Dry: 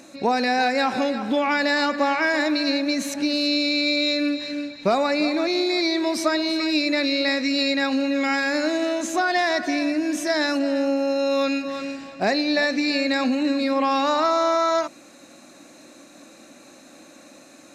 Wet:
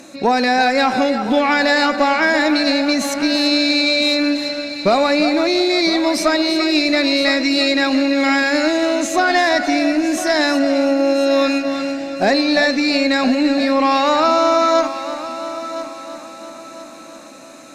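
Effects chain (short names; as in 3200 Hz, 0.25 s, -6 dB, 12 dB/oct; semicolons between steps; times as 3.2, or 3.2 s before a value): added harmonics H 2 -17 dB, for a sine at -8 dBFS; multi-head echo 0.337 s, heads first and third, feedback 50%, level -14 dB; gain +6 dB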